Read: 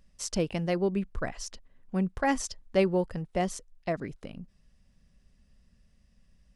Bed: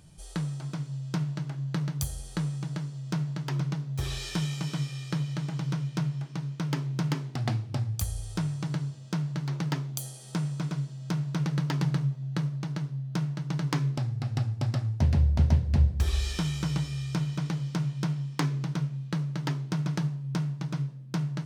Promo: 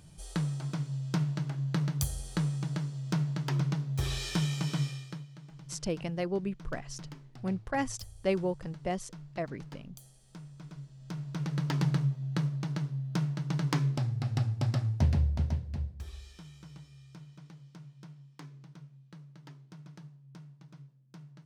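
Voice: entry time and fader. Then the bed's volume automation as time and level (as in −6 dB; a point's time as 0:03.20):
5.50 s, −4.5 dB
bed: 0:04.88 0 dB
0:05.29 −17.5 dB
0:10.50 −17.5 dB
0:11.79 −1 dB
0:14.99 −1 dB
0:16.30 −20.5 dB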